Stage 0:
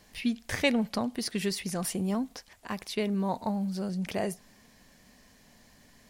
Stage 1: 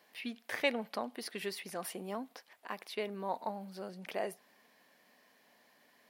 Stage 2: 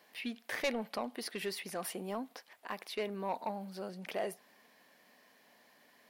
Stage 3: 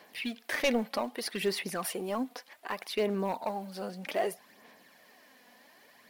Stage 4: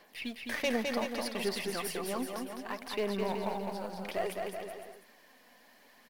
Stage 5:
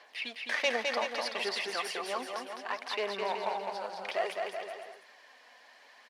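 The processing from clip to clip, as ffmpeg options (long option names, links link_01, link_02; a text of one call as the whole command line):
ffmpeg -i in.wav -af "highpass=420,equalizer=frequency=7000:width_type=o:width=1.2:gain=-11.5,volume=-3dB" out.wav
ffmpeg -i in.wav -af "asoftclip=type=tanh:threshold=-28.5dB,volume=2dB" out.wav
ffmpeg -i in.wav -filter_complex "[0:a]asplit=2[link_01][link_02];[link_02]acrusher=bits=5:mode=log:mix=0:aa=0.000001,volume=-3dB[link_03];[link_01][link_03]amix=inputs=2:normalize=0,aphaser=in_gain=1:out_gain=1:delay=4.1:decay=0.44:speed=0.64:type=sinusoidal" out.wav
ffmpeg -i in.wav -af "aeval=exprs='if(lt(val(0),0),0.708*val(0),val(0))':channel_layout=same,aecho=1:1:210|378|512.4|619.9|705.9:0.631|0.398|0.251|0.158|0.1,volume=-2.5dB" out.wav
ffmpeg -i in.wav -af "highpass=620,lowpass=5800,volume=5dB" out.wav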